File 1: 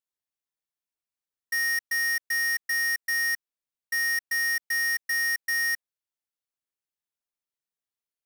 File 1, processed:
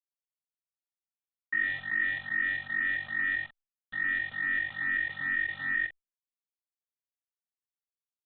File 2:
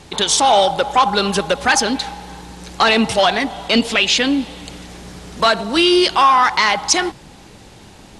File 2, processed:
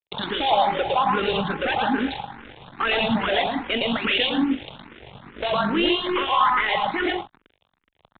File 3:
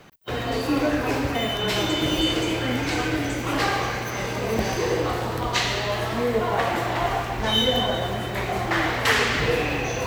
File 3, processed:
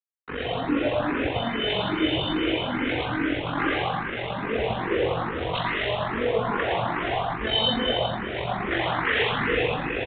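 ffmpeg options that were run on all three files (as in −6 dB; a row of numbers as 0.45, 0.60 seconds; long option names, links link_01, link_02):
-filter_complex "[0:a]highpass=frequency=69:poles=1,bandreject=frequency=368.4:width_type=h:width=4,bandreject=frequency=736.8:width_type=h:width=4,bandreject=frequency=1105.2:width_type=h:width=4,asplit=2[link_01][link_02];[link_02]alimiter=limit=-11dB:level=0:latency=1,volume=1.5dB[link_03];[link_01][link_03]amix=inputs=2:normalize=0,tremolo=f=47:d=0.621,aeval=exprs='sgn(val(0))*max(abs(val(0))-0.0355,0)':channel_layout=same,acrusher=bits=7:dc=4:mix=0:aa=0.000001,asoftclip=type=tanh:threshold=-16dB,asplit=2[link_04][link_05];[link_05]aecho=0:1:113.7|157.4:0.891|0.316[link_06];[link_04][link_06]amix=inputs=2:normalize=0,aresample=8000,aresample=44100,asplit=2[link_07][link_08];[link_08]afreqshift=2.4[link_09];[link_07][link_09]amix=inputs=2:normalize=1"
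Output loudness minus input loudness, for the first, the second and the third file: −4.0, −7.5, −2.0 LU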